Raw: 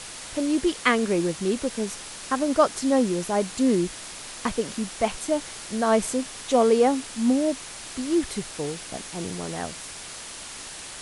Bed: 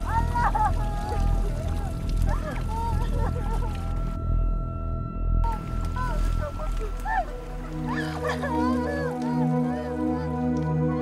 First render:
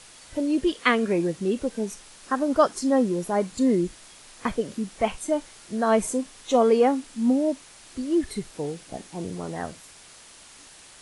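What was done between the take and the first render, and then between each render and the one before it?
noise print and reduce 10 dB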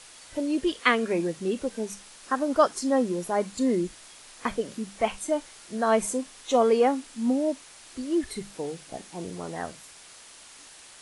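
low shelf 350 Hz -5.5 dB; notches 50/100/150/200 Hz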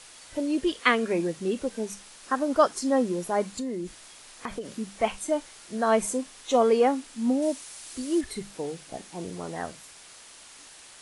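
3.56–4.67 compressor, threshold -29 dBFS; 7.42–8.21 high shelf 5100 Hz +10 dB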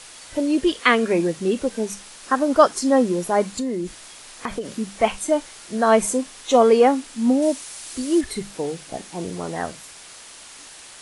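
gain +6.5 dB; limiter -2 dBFS, peak gain reduction 2.5 dB

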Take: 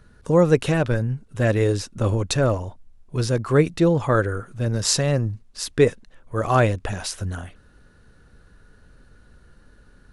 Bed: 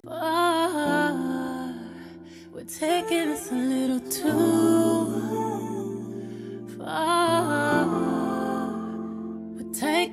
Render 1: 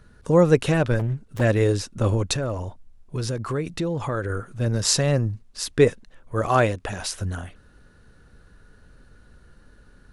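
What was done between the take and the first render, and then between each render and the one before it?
0.99–1.41 self-modulated delay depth 0.79 ms; 2.34–4.3 compressor 4:1, threshold -23 dBFS; 6.47–6.99 low shelf 160 Hz -7 dB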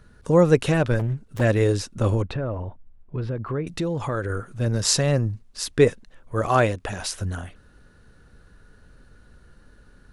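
2.22–3.67 air absorption 460 m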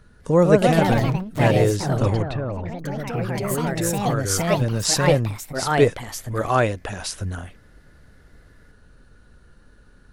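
echoes that change speed 0.203 s, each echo +3 st, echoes 3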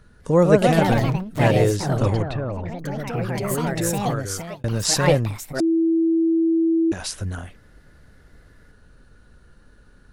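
3.99–4.64 fade out; 5.6–6.92 bleep 328 Hz -15.5 dBFS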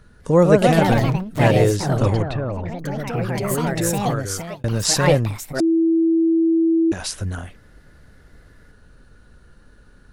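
gain +2 dB; limiter -2 dBFS, peak gain reduction 1.5 dB

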